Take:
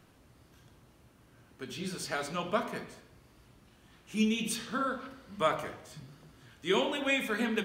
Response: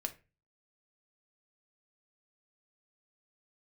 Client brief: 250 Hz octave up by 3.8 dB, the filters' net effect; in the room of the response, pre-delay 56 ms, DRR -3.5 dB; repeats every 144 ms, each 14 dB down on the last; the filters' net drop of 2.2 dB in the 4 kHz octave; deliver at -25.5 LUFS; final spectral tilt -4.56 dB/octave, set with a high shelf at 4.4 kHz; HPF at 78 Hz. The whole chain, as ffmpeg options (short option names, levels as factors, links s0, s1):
-filter_complex "[0:a]highpass=78,equalizer=f=250:t=o:g=4.5,equalizer=f=4000:t=o:g=-6,highshelf=f=4400:g=6,aecho=1:1:144|288:0.2|0.0399,asplit=2[s0][s1];[1:a]atrim=start_sample=2205,adelay=56[s2];[s1][s2]afir=irnorm=-1:irlink=0,volume=1.58[s3];[s0][s3]amix=inputs=2:normalize=0,volume=0.891"